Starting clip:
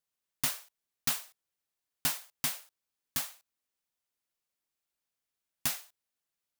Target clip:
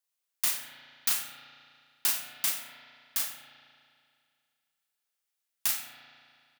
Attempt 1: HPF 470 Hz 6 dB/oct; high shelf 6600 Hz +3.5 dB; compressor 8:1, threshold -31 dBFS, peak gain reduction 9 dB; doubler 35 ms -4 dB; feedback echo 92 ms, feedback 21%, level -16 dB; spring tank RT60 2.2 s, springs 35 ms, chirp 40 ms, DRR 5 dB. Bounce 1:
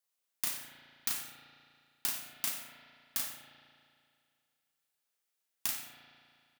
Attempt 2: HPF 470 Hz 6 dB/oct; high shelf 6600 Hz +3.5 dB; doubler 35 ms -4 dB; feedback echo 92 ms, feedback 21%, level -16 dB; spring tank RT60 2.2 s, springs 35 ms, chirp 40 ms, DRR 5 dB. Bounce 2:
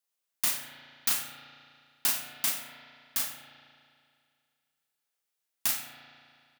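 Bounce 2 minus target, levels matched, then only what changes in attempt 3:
500 Hz band +3.5 dB
change: HPF 1000 Hz 6 dB/oct

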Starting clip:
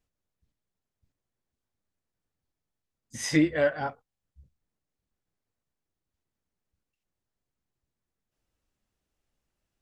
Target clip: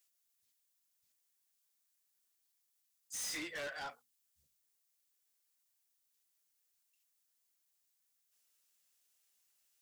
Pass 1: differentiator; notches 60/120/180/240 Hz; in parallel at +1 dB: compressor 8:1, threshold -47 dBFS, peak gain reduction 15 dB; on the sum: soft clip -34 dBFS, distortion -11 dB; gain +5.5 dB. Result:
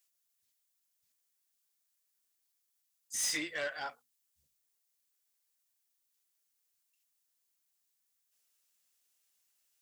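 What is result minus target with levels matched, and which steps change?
soft clip: distortion -7 dB
change: soft clip -44.5 dBFS, distortion -4 dB

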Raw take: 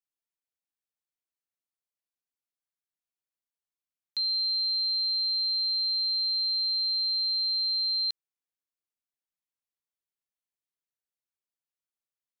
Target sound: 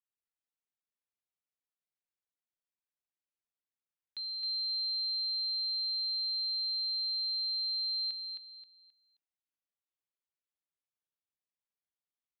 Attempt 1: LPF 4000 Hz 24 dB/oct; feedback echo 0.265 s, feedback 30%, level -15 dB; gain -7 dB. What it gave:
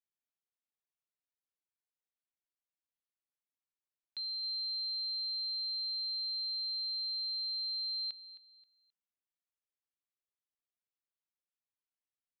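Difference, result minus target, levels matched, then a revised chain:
echo-to-direct -11 dB
LPF 4000 Hz 24 dB/oct; feedback echo 0.265 s, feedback 30%, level -4 dB; gain -7 dB

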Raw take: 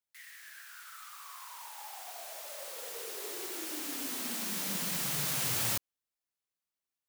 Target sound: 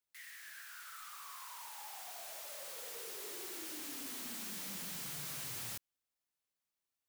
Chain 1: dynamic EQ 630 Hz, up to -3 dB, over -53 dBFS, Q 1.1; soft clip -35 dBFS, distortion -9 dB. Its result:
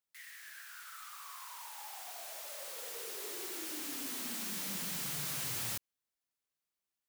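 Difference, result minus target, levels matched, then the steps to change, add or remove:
soft clip: distortion -5 dB
change: soft clip -42 dBFS, distortion -5 dB

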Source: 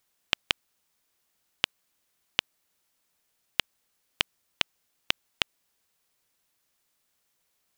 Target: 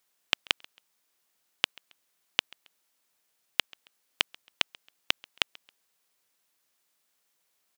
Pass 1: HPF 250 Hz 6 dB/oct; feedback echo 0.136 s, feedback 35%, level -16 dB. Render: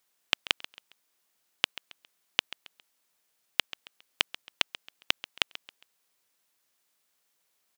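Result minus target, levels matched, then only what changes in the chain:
echo-to-direct +9.5 dB
change: feedback echo 0.136 s, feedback 35%, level -25.5 dB

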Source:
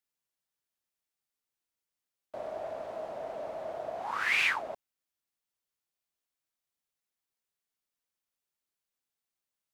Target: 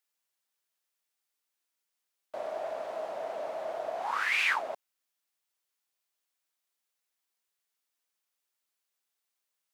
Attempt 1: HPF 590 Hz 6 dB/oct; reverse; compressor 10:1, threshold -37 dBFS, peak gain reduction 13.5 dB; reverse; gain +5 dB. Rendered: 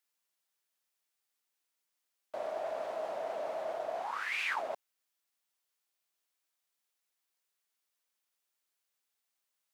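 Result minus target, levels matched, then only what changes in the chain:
compressor: peak gain reduction +7 dB
change: compressor 10:1, threshold -29 dBFS, peak gain reduction 6 dB

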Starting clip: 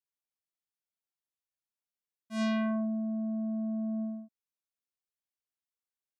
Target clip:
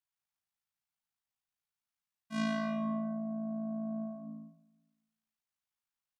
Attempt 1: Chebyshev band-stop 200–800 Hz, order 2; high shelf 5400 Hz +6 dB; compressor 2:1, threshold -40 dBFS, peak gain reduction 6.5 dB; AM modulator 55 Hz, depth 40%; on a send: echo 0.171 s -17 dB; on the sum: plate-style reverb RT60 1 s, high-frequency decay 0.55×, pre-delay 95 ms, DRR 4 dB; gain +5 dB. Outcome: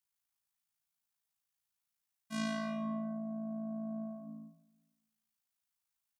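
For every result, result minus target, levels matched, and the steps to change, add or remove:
8000 Hz band +6.5 dB; compressor: peak gain reduction +3.5 dB
change: high shelf 5400 Hz -4.5 dB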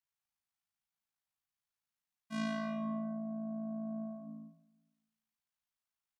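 compressor: peak gain reduction +3.5 dB
change: compressor 2:1, threshold -33 dBFS, peak gain reduction 2.5 dB

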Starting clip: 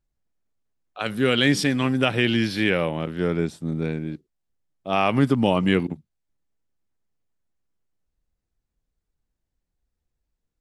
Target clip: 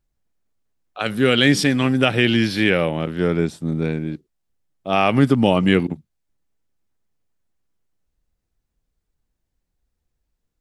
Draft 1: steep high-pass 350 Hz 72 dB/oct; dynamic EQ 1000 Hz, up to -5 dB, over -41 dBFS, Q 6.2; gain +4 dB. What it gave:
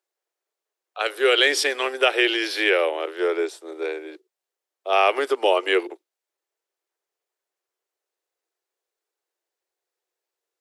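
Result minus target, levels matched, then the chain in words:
250 Hz band -11.0 dB
dynamic EQ 1000 Hz, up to -5 dB, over -41 dBFS, Q 6.2; gain +4 dB

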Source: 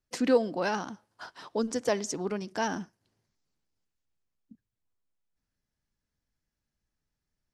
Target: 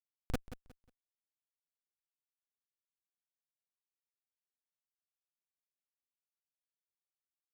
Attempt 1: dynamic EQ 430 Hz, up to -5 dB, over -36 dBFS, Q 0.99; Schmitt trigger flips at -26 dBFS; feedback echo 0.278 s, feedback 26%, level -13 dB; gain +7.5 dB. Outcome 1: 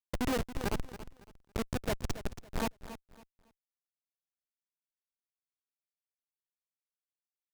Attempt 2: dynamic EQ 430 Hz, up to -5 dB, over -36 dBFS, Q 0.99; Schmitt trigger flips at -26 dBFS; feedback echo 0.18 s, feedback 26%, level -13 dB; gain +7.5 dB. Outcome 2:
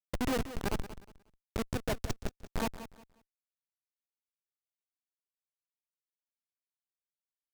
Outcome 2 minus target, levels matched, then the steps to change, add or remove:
Schmitt trigger: distortion -16 dB
change: Schmitt trigger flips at -18.5 dBFS

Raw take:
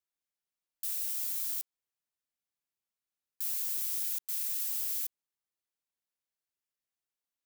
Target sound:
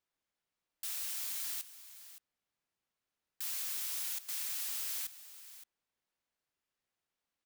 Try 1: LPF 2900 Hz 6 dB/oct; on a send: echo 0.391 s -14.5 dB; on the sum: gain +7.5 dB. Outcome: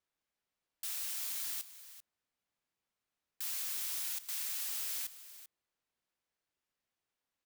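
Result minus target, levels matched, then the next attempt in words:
echo 0.178 s early
LPF 2900 Hz 6 dB/oct; on a send: echo 0.569 s -14.5 dB; on the sum: gain +7.5 dB

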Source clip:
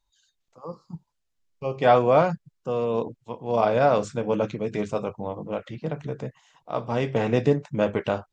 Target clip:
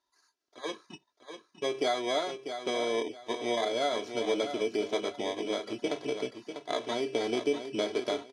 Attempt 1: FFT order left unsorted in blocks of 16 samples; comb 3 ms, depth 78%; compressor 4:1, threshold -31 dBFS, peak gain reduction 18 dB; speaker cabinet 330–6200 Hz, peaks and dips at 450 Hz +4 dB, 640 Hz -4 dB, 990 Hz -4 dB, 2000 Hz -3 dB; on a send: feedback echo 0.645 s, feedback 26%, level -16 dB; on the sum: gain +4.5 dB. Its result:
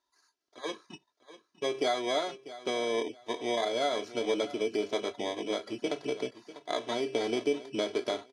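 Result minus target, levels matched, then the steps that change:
echo-to-direct -7 dB
change: feedback echo 0.645 s, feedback 26%, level -9 dB

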